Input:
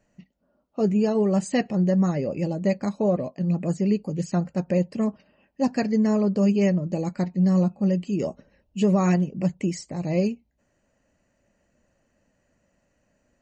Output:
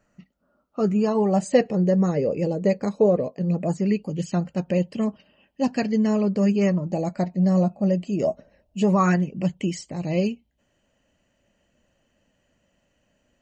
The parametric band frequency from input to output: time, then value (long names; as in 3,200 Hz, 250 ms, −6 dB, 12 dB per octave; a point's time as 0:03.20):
parametric band +12.5 dB 0.33 octaves
0:00.97 1,300 Hz
0:01.65 460 Hz
0:03.56 460 Hz
0:04.03 3,100 Hz
0:06.15 3,100 Hz
0:07.03 650 Hz
0:08.79 650 Hz
0:09.40 3,100 Hz